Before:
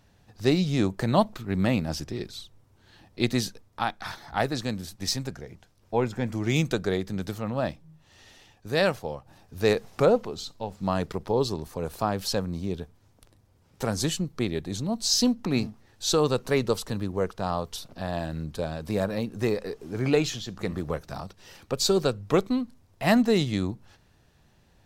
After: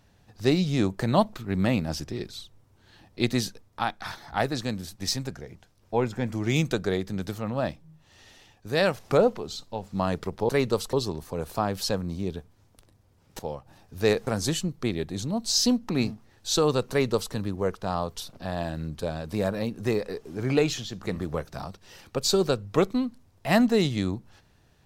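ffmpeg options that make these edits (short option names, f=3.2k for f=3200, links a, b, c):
-filter_complex "[0:a]asplit=6[a][b][c][d][e][f];[a]atrim=end=8.992[g];[b]atrim=start=9.868:end=11.372[h];[c]atrim=start=16.458:end=16.902[i];[d]atrim=start=11.368:end=13.832[j];[e]atrim=start=8.988:end=9.872[k];[f]atrim=start=13.828[l];[g][h]acrossfade=d=0.004:c1=hsin:c2=hsin[m];[m][i]acrossfade=d=0.004:c1=hsin:c2=hsin[n];[n][j]acrossfade=d=0.004:c1=hsin:c2=hsin[o];[o][k]acrossfade=d=0.004:c1=hsin:c2=hsin[p];[p][l]acrossfade=d=0.004:c1=hsin:c2=hsin"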